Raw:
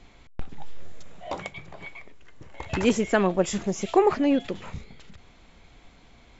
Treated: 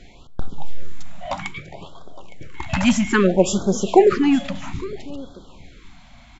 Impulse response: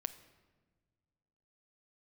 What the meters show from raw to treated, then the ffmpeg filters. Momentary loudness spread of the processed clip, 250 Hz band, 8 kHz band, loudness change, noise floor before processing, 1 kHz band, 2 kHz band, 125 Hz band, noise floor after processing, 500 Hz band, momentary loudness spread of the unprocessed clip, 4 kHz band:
22 LU, +6.5 dB, n/a, +5.5 dB, -54 dBFS, +4.5 dB, +6.5 dB, +7.5 dB, -46 dBFS, +6.0 dB, 21 LU, +7.0 dB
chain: -filter_complex "[0:a]aecho=1:1:862:0.119,asplit=2[a][b];[1:a]atrim=start_sample=2205,asetrate=52920,aresample=44100[c];[b][c]afir=irnorm=-1:irlink=0,volume=6.5dB[d];[a][d]amix=inputs=2:normalize=0,afftfilt=real='re*(1-between(b*sr/1024,370*pow(2300/370,0.5+0.5*sin(2*PI*0.61*pts/sr))/1.41,370*pow(2300/370,0.5+0.5*sin(2*PI*0.61*pts/sr))*1.41))':imag='im*(1-between(b*sr/1024,370*pow(2300/370,0.5+0.5*sin(2*PI*0.61*pts/sr))/1.41,370*pow(2300/370,0.5+0.5*sin(2*PI*0.61*pts/sr))*1.41))':win_size=1024:overlap=0.75,volume=-1dB"

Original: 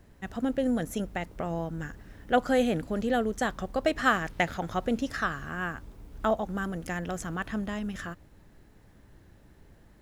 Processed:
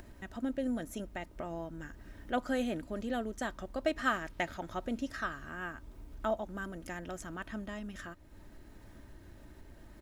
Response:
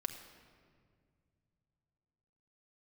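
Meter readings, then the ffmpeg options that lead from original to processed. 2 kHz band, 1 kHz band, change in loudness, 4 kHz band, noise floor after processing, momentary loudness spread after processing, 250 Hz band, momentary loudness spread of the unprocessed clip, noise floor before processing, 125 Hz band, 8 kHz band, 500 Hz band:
-7.0 dB, -8.0 dB, -7.5 dB, -7.0 dB, -55 dBFS, 22 LU, -7.0 dB, 13 LU, -57 dBFS, -10.5 dB, -7.0 dB, -8.0 dB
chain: -af "aecho=1:1:3.2:0.41,acompressor=mode=upward:threshold=-33dB:ratio=2.5,volume=-8dB"

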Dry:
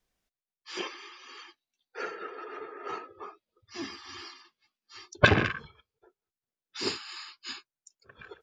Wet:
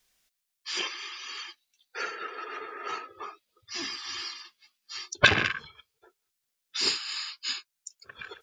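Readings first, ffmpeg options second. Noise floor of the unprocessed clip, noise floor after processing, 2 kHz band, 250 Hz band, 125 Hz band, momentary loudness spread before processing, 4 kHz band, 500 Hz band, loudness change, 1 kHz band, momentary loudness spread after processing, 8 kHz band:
under -85 dBFS, -82 dBFS, +3.0 dB, -5.5 dB, -6.5 dB, 24 LU, +7.5 dB, -4.0 dB, +1.5 dB, +0.5 dB, 20 LU, +9.0 dB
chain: -filter_complex "[0:a]tiltshelf=f=1.3k:g=-7.5,asplit=2[a][b];[b]acompressor=threshold=-44dB:ratio=6,volume=1dB[c];[a][c]amix=inputs=2:normalize=0"

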